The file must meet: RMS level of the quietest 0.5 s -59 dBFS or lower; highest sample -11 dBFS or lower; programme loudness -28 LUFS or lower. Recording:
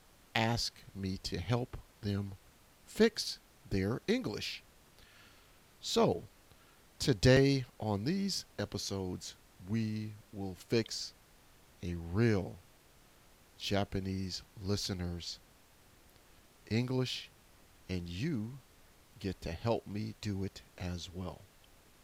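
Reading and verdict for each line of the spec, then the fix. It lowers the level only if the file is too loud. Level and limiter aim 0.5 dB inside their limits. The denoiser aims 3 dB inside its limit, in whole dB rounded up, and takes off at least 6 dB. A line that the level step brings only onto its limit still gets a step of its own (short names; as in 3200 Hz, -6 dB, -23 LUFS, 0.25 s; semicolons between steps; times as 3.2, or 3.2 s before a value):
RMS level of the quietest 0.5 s -63 dBFS: OK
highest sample -13.0 dBFS: OK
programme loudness -36.0 LUFS: OK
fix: none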